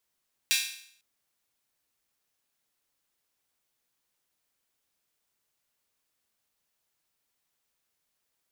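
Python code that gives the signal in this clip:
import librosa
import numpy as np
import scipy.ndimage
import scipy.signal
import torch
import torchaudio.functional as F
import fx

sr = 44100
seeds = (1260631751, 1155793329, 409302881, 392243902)

y = fx.drum_hat_open(sr, length_s=0.5, from_hz=2600.0, decay_s=0.62)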